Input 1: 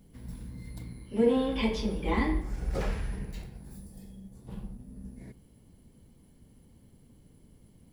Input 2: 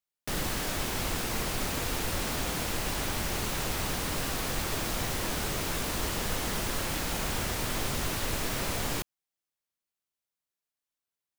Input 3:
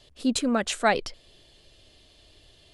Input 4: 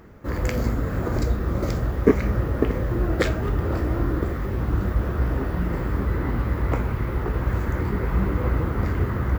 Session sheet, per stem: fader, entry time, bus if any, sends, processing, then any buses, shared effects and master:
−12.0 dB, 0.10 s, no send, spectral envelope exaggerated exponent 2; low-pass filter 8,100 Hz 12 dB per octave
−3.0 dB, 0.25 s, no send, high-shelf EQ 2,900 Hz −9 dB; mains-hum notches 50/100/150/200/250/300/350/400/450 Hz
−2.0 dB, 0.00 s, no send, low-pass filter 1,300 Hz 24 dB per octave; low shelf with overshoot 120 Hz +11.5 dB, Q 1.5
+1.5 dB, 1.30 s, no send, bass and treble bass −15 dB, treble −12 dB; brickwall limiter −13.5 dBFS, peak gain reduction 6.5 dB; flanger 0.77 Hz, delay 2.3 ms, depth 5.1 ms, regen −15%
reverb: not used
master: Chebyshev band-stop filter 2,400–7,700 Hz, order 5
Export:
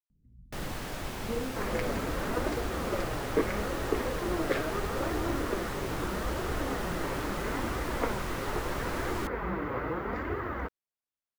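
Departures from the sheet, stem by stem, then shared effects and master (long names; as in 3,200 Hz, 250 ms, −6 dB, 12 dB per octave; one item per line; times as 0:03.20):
stem 3: muted
master: missing Chebyshev band-stop filter 2,400–7,700 Hz, order 5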